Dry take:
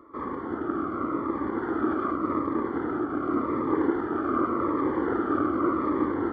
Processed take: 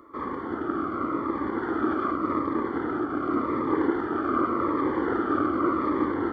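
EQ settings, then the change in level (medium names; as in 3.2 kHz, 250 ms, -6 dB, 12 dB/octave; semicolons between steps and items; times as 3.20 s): treble shelf 2.6 kHz +9.5 dB; 0.0 dB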